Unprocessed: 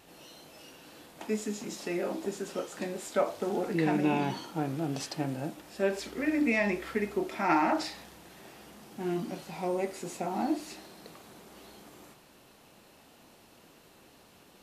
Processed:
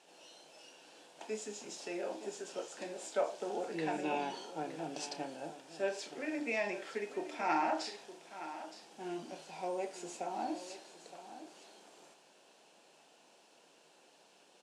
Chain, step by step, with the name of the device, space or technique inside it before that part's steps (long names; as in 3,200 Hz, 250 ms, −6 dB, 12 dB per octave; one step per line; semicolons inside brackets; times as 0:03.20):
high-pass filter 470 Hz 12 dB per octave
television speaker (loudspeaker in its box 160–8,800 Hz, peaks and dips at 160 Hz +10 dB, 1,200 Hz −8 dB, 2,000 Hz −7 dB, 4,000 Hz −3 dB)
double-tracking delay 32 ms −13 dB
single-tap delay 917 ms −13 dB
level −3 dB